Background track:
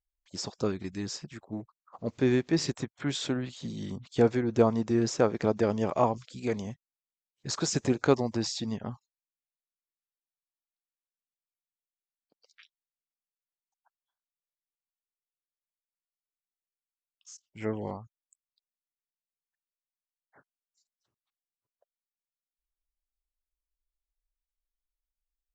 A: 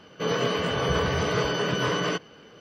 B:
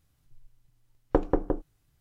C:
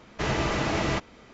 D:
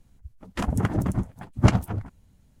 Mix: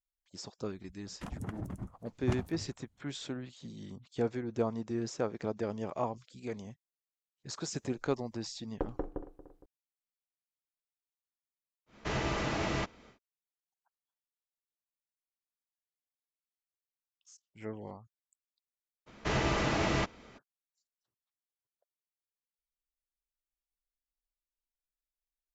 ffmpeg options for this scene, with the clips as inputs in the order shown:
ffmpeg -i bed.wav -i cue0.wav -i cue1.wav -i cue2.wav -i cue3.wav -filter_complex "[3:a]asplit=2[link_01][link_02];[0:a]volume=-9dB[link_03];[2:a]asplit=2[link_04][link_05];[link_05]adelay=231,lowpass=frequency=2800:poles=1,volume=-14.5dB,asplit=2[link_06][link_07];[link_07]adelay=231,lowpass=frequency=2800:poles=1,volume=0.5,asplit=2[link_08][link_09];[link_09]adelay=231,lowpass=frequency=2800:poles=1,volume=0.5,asplit=2[link_10][link_11];[link_11]adelay=231,lowpass=frequency=2800:poles=1,volume=0.5,asplit=2[link_12][link_13];[link_13]adelay=231,lowpass=frequency=2800:poles=1,volume=0.5[link_14];[link_04][link_06][link_08][link_10][link_12][link_14]amix=inputs=6:normalize=0[link_15];[4:a]atrim=end=2.6,asetpts=PTS-STARTPTS,volume=-16dB,afade=type=in:duration=0.004:curve=hsin,afade=type=out:start_time=2.596:duration=0.004:curve=hsin,adelay=640[link_16];[link_15]atrim=end=2,asetpts=PTS-STARTPTS,volume=-12dB,afade=type=in:duration=0.004:curve=hsin,afade=type=out:start_time=1.996:duration=0.004:curve=hsin,adelay=7660[link_17];[link_01]atrim=end=1.33,asetpts=PTS-STARTPTS,volume=-6.5dB,afade=type=in:duration=0.1,afade=type=out:start_time=1.23:duration=0.1,adelay=523026S[link_18];[link_02]atrim=end=1.33,asetpts=PTS-STARTPTS,volume=-3.5dB,afade=type=in:duration=0.02,afade=type=out:start_time=1.31:duration=0.02,adelay=19060[link_19];[link_03][link_16][link_17][link_18][link_19]amix=inputs=5:normalize=0" out.wav

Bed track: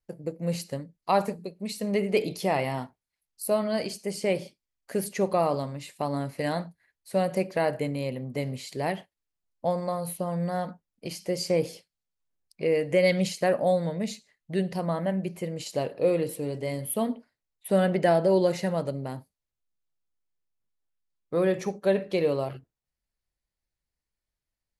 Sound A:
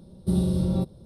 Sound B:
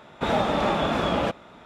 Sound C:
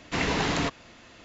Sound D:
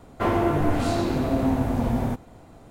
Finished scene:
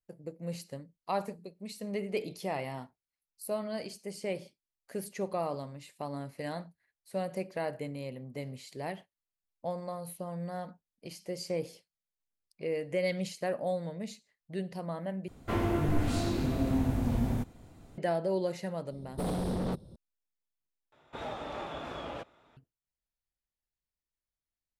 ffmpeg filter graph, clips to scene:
ffmpeg -i bed.wav -i cue0.wav -i cue1.wav -i cue2.wav -i cue3.wav -filter_complex "[0:a]volume=-9dB[link_01];[4:a]equalizer=frequency=790:width_type=o:width=2.4:gain=-8[link_02];[1:a]aeval=exprs='0.0668*(abs(mod(val(0)/0.0668+3,4)-2)-1)':channel_layout=same[link_03];[2:a]equalizer=frequency=200:width=5:gain=-13[link_04];[link_01]asplit=3[link_05][link_06][link_07];[link_05]atrim=end=15.284[link_08];[link_02]atrim=end=2.7,asetpts=PTS-STARTPTS,volume=-3.5dB[link_09];[link_06]atrim=start=17.976:end=20.924[link_10];[link_04]atrim=end=1.65,asetpts=PTS-STARTPTS,volume=-15.5dB[link_11];[link_07]atrim=start=22.566[link_12];[link_03]atrim=end=1.05,asetpts=PTS-STARTPTS,volume=-3.5dB,afade=type=in:duration=0.004:curve=hsin,afade=type=out:start_time=1.046:duration=0.004:curve=hsin,adelay=18910[link_13];[link_08][link_09]acrossfade=duration=0.004:curve1=hsin:curve2=hsin[link_14];[link_14][link_10]acrossfade=duration=0.004:curve1=hsin:curve2=hsin[link_15];[link_15][link_11]acrossfade=duration=0.004:curve1=hsin:curve2=hsin[link_16];[link_16][link_12]acrossfade=duration=0.004:curve1=hsin:curve2=hsin[link_17];[link_17][link_13]amix=inputs=2:normalize=0" out.wav

